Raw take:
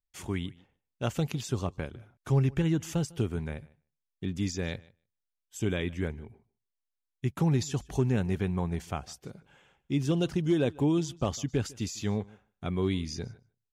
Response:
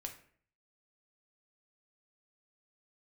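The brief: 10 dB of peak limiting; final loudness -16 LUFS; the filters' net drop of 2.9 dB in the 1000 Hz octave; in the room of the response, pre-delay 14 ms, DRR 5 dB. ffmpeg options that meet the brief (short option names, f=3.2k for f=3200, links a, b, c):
-filter_complex "[0:a]equalizer=f=1k:t=o:g=-4,alimiter=level_in=3.5dB:limit=-24dB:level=0:latency=1,volume=-3.5dB,asplit=2[a][b];[1:a]atrim=start_sample=2205,adelay=14[c];[b][c]afir=irnorm=-1:irlink=0,volume=-2dB[d];[a][d]amix=inputs=2:normalize=0,volume=21dB"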